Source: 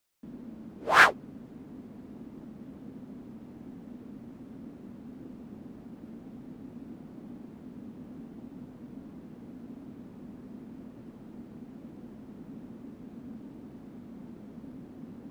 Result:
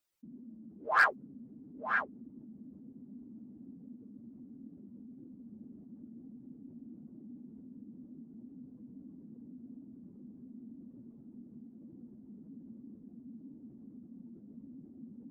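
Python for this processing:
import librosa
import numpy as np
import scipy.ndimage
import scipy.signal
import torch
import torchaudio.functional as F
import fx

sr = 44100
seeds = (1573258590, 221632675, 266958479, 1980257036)

y = fx.spec_expand(x, sr, power=1.8)
y = y + 10.0 ** (-7.0 / 20.0) * np.pad(y, (int(943 * sr / 1000.0), 0))[:len(y)]
y = np.clip(y, -10.0 ** (-10.5 / 20.0), 10.0 ** (-10.5 / 20.0))
y = F.gain(torch.from_numpy(y), -6.0).numpy()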